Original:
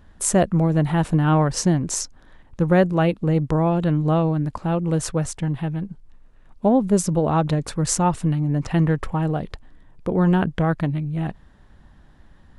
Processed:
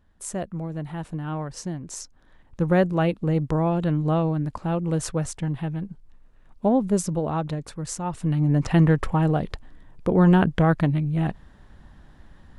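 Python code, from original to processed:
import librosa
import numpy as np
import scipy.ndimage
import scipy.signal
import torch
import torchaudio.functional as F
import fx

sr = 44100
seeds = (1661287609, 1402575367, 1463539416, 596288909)

y = fx.gain(x, sr, db=fx.line((1.8, -12.5), (2.63, -3.0), (6.82, -3.0), (8.02, -11.0), (8.43, 1.5)))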